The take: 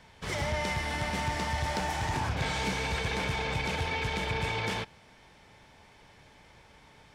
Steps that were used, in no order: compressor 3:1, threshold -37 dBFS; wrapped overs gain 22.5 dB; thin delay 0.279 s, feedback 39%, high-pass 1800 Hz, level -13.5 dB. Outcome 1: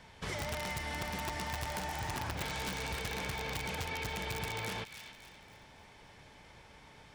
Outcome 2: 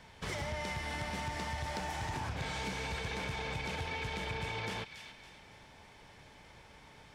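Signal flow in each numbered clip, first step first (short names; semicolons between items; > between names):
wrapped overs > thin delay > compressor; thin delay > compressor > wrapped overs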